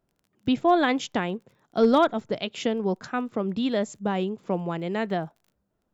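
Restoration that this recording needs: clip repair -11 dBFS; de-click

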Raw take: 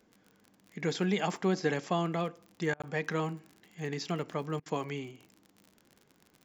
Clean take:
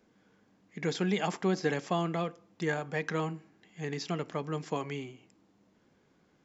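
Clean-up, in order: de-click; interpolate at 2.82, 16 ms; interpolate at 2.74/4.6, 58 ms

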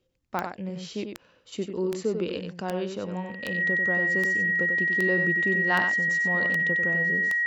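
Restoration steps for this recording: de-click; notch 1900 Hz, Q 30; inverse comb 94 ms -6.5 dB

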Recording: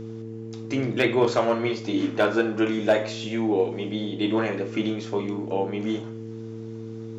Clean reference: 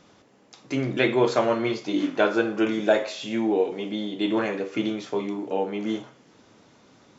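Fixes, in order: clip repair -11 dBFS; de-hum 112.1 Hz, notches 4

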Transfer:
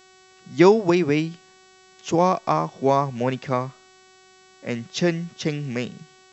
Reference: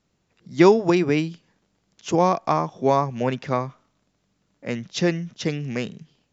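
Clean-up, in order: de-hum 374.8 Hz, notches 21

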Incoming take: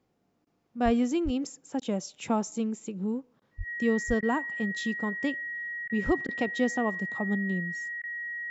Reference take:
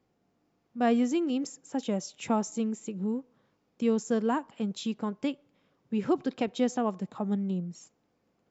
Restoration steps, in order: notch 1900 Hz, Q 30; de-plosive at 0.84/1.24/3.57/4.07/6.05; interpolate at 0.45/1.8/3.4/4.21/5.88/6.27/8.02, 15 ms

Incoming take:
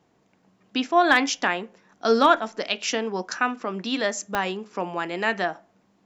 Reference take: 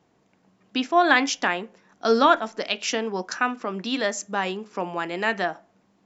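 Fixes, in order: clip repair -6.5 dBFS; de-click

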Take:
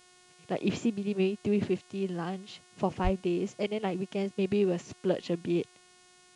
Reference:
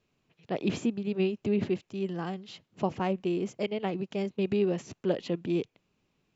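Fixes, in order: de-hum 362.2 Hz, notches 28; de-plosive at 3.03; expander -52 dBFS, range -21 dB

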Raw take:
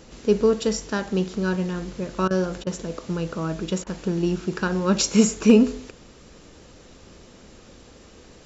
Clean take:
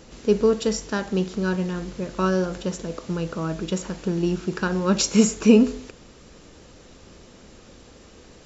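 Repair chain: clip repair -5 dBFS; interpolate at 2.28/2.64/3.84, 25 ms

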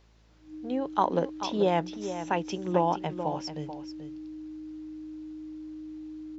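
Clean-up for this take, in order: de-hum 54.6 Hz, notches 12; notch 310 Hz, Q 30; inverse comb 0.435 s -10.5 dB

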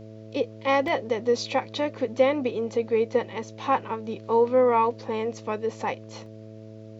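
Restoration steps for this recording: de-hum 109.2 Hz, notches 6; interpolate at 0.88/6.26, 1.8 ms

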